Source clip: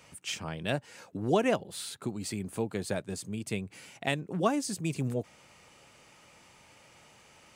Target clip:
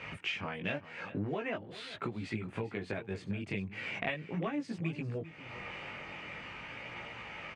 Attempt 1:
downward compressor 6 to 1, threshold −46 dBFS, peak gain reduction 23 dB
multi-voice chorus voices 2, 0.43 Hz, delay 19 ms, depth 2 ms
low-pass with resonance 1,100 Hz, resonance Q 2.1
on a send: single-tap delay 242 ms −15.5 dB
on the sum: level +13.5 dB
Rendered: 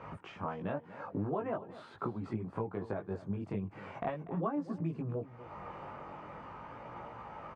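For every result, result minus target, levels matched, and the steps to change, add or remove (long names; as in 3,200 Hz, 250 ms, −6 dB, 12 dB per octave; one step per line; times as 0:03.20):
2,000 Hz band −11.0 dB; echo 157 ms early
change: low-pass with resonance 2,300 Hz, resonance Q 2.1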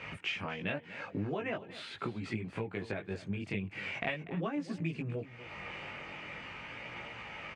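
echo 157 ms early
change: single-tap delay 399 ms −15.5 dB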